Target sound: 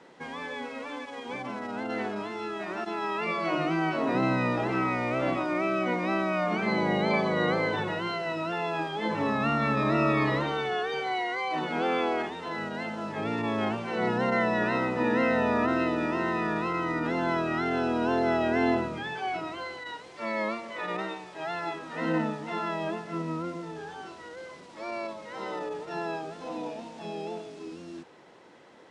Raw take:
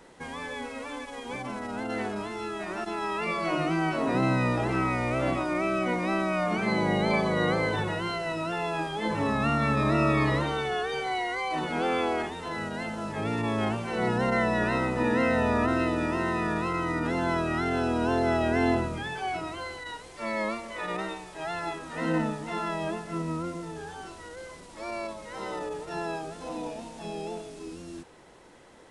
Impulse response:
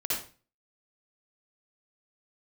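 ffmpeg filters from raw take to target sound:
-af "highpass=150,lowpass=5200"

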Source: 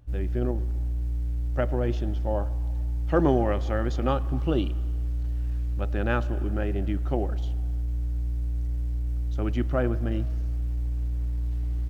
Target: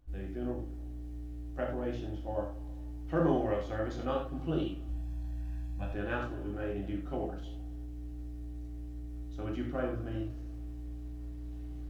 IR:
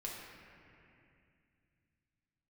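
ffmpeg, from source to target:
-filter_complex "[0:a]asettb=1/sr,asplit=3[link_01][link_02][link_03];[link_01]atrim=end=4.884[link_04];[link_02]atrim=start=4.88:end=5.93,asetpts=PTS-STARTPTS,afade=type=in:duration=0.004:curve=qsin,afade=type=out:start_time=1.046:duration=0.004:curve=qsin,aecho=1:1:1.2:0.76,atrim=end_sample=46305[link_05];[link_03]atrim=start=5.926[link_06];[link_04][link_05]acrossfade=duration=0.004:curve1=hsin:curve2=qsin[link_07];[link_07][link_06]acrossfade=duration=0.004:curve1=qsin:curve2=hsin[link_08];[1:a]atrim=start_sample=2205,afade=type=out:start_time=0.21:duration=0.01,atrim=end_sample=9702,asetrate=66150,aresample=44100[link_09];[link_08][link_09]afir=irnorm=-1:irlink=0,volume=-2dB"

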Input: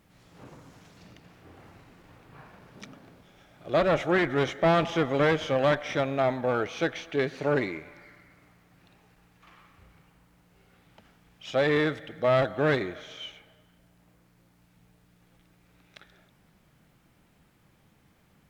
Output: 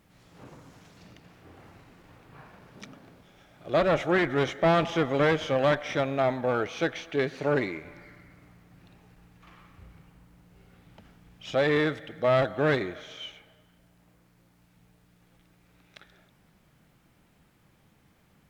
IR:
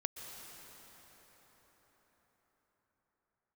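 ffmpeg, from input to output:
-filter_complex "[0:a]asettb=1/sr,asplit=3[link_01][link_02][link_03];[link_01]atrim=end=7.844[link_04];[link_02]atrim=start=7.84:end=11.55,asetpts=PTS-STARTPTS,afade=type=in:duration=0.004:curve=qsin,afade=type=out:start_time=3.706:duration=0.004:curve=qsin,lowshelf=frequency=330:gain=7.5[link_05];[link_03]atrim=start=11.546[link_06];[link_04][link_05]acrossfade=duration=0.004:curve1=hsin:curve2=qsin[link_07];[link_07][link_06]acrossfade=duration=0.004:curve1=qsin:curve2=hsin"

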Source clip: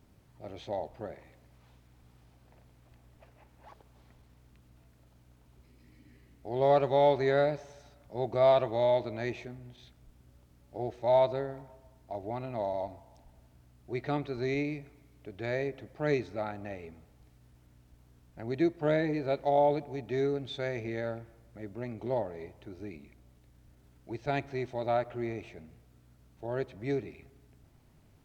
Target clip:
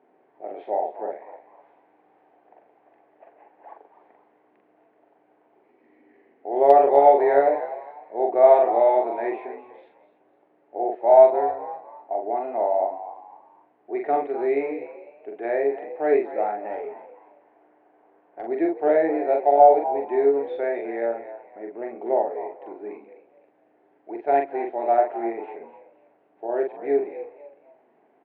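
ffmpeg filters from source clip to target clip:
ffmpeg -i in.wav -filter_complex "[0:a]highpass=frequency=310:width=0.5412,highpass=frequency=310:width=1.3066,equalizer=frequency=420:width_type=q:width=4:gain=5,equalizer=frequency=740:width_type=q:width=4:gain=9,equalizer=frequency=1300:width_type=q:width=4:gain=-7,lowpass=frequency=2000:width=0.5412,lowpass=frequency=2000:width=1.3066,asplit=3[link_01][link_02][link_03];[link_01]afade=type=out:start_time=16.72:duration=0.02[link_04];[link_02]asplit=2[link_05][link_06];[link_06]highpass=frequency=720:poles=1,volume=14dB,asoftclip=type=tanh:threshold=-26dB[link_07];[link_05][link_07]amix=inputs=2:normalize=0,lowpass=frequency=1100:poles=1,volume=-6dB,afade=type=in:start_time=16.72:duration=0.02,afade=type=out:start_time=18.41:duration=0.02[link_08];[link_03]afade=type=in:start_time=18.41:duration=0.02[link_09];[link_04][link_08][link_09]amix=inputs=3:normalize=0,asplit=2[link_10][link_11];[link_11]adelay=43,volume=-3.5dB[link_12];[link_10][link_12]amix=inputs=2:normalize=0,aeval=exprs='0.422*(cos(1*acos(clip(val(0)/0.422,-1,1)))-cos(1*PI/2))+0.00531*(cos(2*acos(clip(val(0)/0.422,-1,1)))-cos(2*PI/2))':channel_layout=same,asplit=4[link_13][link_14][link_15][link_16];[link_14]adelay=251,afreqshift=79,volume=-14dB[link_17];[link_15]adelay=502,afreqshift=158,volume=-24.2dB[link_18];[link_16]adelay=753,afreqshift=237,volume=-34.3dB[link_19];[link_13][link_17][link_18][link_19]amix=inputs=4:normalize=0,volume=5dB" out.wav

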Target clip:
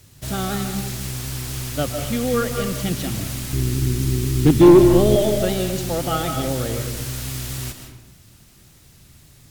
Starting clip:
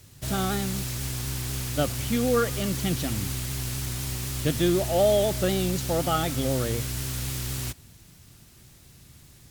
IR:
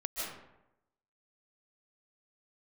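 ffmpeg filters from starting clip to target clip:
-filter_complex "[0:a]asettb=1/sr,asplit=3[link_01][link_02][link_03];[link_01]atrim=end=3.534[link_04];[link_02]atrim=start=3.53:end=5.16,asetpts=PTS-STARTPTS,afade=type=in:duration=0.004:curve=qsin,afade=type=out:start_time=1.626:duration=0.004:curve=qsin,lowshelf=frequency=470:width_type=q:width=3:gain=8.5[link_05];[link_03]atrim=start=5.156[link_06];[link_04][link_05]acrossfade=duration=0.004:curve1=hsin:curve2=qsin[link_07];[link_07][link_06]acrossfade=duration=0.004:curve1=qsin:curve2=hsin,aeval=exprs='0.422*(cos(1*acos(clip(val(0)/0.422,-1,1)))-cos(1*PI/2))+0.00841*(cos(4*acos(clip(val(0)/0.422,-1,1)))-cos(4*PI/2))':channel_layout=same,asplit=2[link_08][link_09];[1:a]atrim=start_sample=2205[link_10];[link_09][link_10]afir=irnorm=-1:irlink=0,volume=-4.5dB[link_11];[link_08][link_11]amix=inputs=2:normalize=0,volume=-1.5dB"

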